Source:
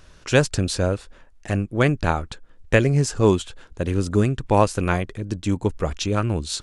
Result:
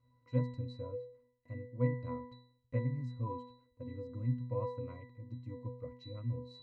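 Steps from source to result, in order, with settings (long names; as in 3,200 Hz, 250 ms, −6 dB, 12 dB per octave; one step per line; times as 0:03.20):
resonances in every octave B, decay 0.54 s
level −1 dB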